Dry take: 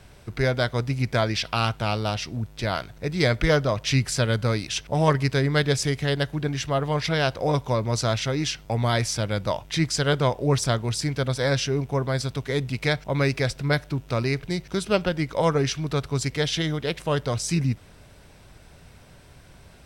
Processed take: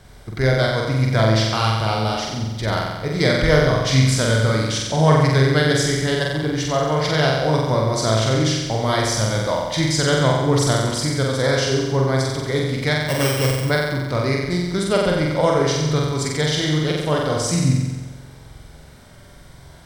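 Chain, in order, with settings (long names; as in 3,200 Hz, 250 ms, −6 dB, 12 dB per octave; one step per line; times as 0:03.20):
0:13.00–0:13.65: samples sorted by size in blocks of 16 samples
notch filter 2,600 Hz, Q 5.4
on a send: flutter between parallel walls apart 7.8 metres, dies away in 1.2 s
0:09.18–0:10.21: on the sum: surface crackle 190 per second −40 dBFS
level +2 dB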